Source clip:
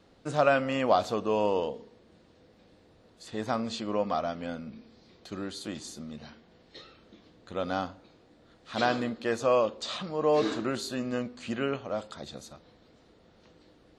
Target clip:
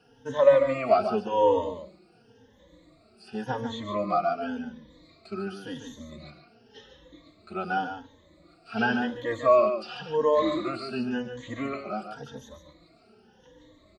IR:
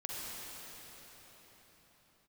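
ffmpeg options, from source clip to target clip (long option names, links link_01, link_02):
-filter_complex "[0:a]afftfilt=real='re*pow(10,20/40*sin(2*PI*(1.1*log(max(b,1)*sr/1024/100)/log(2)-(0.91)*(pts-256)/sr)))':imag='im*pow(10,20/40*sin(2*PI*(1.1*log(max(b,1)*sr/1024/100)/log(2)-(0.91)*(pts-256)/sr)))':win_size=1024:overlap=0.75,acrossover=split=3700[link_01][link_02];[link_02]acompressor=threshold=-54dB:ratio=4:attack=1:release=60[link_03];[link_01][link_03]amix=inputs=2:normalize=0,aecho=1:1:144:0.398,asplit=2[link_04][link_05];[link_05]adelay=3.7,afreqshift=-1.4[link_06];[link_04][link_06]amix=inputs=2:normalize=1"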